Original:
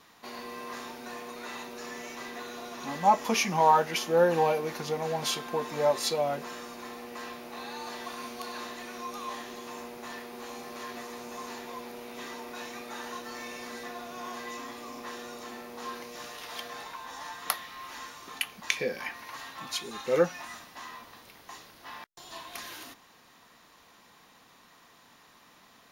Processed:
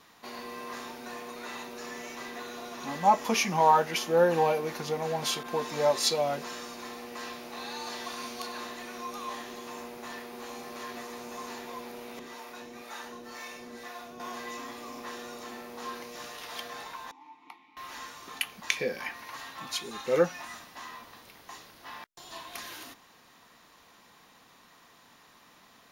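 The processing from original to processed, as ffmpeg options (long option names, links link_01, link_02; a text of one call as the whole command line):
ffmpeg -i in.wav -filter_complex "[0:a]asettb=1/sr,asplit=3[link_01][link_02][link_03];[link_01]atrim=end=5.434[link_04];[link_02]atrim=start=5.43:end=8.47,asetpts=PTS-STARTPTS,afade=type=in:duration=0.004:curve=qsin,afade=type=out:start_time=3.036:duration=0.004:curve=qsin,adynamicequalizer=threshold=0.00316:dfrequency=5200:dqfactor=0.73:tfrequency=5200:tqfactor=0.73:attack=5:release=100:ratio=0.375:range=2.5:mode=boostabove:tftype=bell[link_05];[link_03]atrim=start=8.466[link_06];[link_04][link_05]acrossfade=duration=0.004:curve1=hsin:curve2=qsin[link_07];[link_07][link_06]acrossfade=duration=0.004:curve1=qsin:curve2=hsin,asettb=1/sr,asplit=3[link_08][link_09][link_10];[link_08]atrim=end=12.194[link_11];[link_09]atrim=start=12.19:end=14.2,asetpts=PTS-STARTPTS,afade=type=in:duration=0.004:curve=qsin,afade=type=out:start_time=2.006:duration=0.004:curve=qsin,acrossover=split=570[link_12][link_13];[link_12]aeval=exprs='val(0)*(1-0.7/2+0.7/2*cos(2*PI*2*n/s))':channel_layout=same[link_14];[link_13]aeval=exprs='val(0)*(1-0.7/2-0.7/2*cos(2*PI*2*n/s))':channel_layout=same[link_15];[link_14][link_15]amix=inputs=2:normalize=0[link_16];[link_10]atrim=start=14.196[link_17];[link_11][link_16]acrossfade=duration=0.004:curve1=hsin:curve2=qsin[link_18];[link_18][link_17]acrossfade=duration=0.004:curve1=qsin:curve2=hsin,asettb=1/sr,asplit=3[link_19][link_20][link_21];[link_19]atrim=end=17.114[link_22];[link_20]atrim=start=17.11:end=17.77,asetpts=PTS-STARTPTS,afade=type=in:duration=0.004:curve=qsin,afade=type=out:start_time=0.656:duration=0.004:curve=qsin,asplit=3[link_23][link_24][link_25];[link_23]bandpass=frequency=300:width_type=q:width=8,volume=0dB[link_26];[link_24]bandpass=frequency=870:width_type=q:width=8,volume=-6dB[link_27];[link_25]bandpass=frequency=2240:width_type=q:width=8,volume=-9dB[link_28];[link_26][link_27][link_28]amix=inputs=3:normalize=0[link_29];[link_21]atrim=start=17.766[link_30];[link_22][link_29]acrossfade=duration=0.004:curve1=hsin:curve2=qsin[link_31];[link_31][link_30]acrossfade=duration=0.004:curve1=qsin:curve2=hsin" out.wav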